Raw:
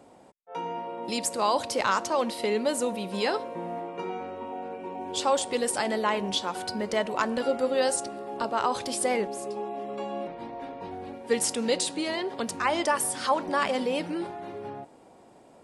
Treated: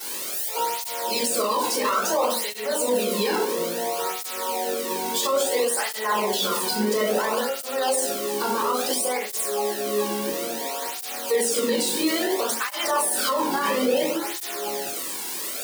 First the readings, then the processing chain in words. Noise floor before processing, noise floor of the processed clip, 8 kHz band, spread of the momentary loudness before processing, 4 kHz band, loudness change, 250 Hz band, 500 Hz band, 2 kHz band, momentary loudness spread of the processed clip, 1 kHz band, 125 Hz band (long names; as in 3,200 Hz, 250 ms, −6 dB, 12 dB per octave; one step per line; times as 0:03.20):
−54 dBFS, −32 dBFS, +7.5 dB, 12 LU, +6.0 dB, +4.5 dB, +3.0 dB, +4.0 dB, +3.5 dB, 6 LU, +3.0 dB, can't be measured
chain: spike at every zero crossing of −23.5 dBFS
high-pass filter 210 Hz 12 dB per octave
rectangular room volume 65 cubic metres, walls mixed, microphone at 3.5 metres
brickwall limiter −8 dBFS, peak gain reduction 10 dB
through-zero flanger with one copy inverted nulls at 0.59 Hz, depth 1.7 ms
level −3.5 dB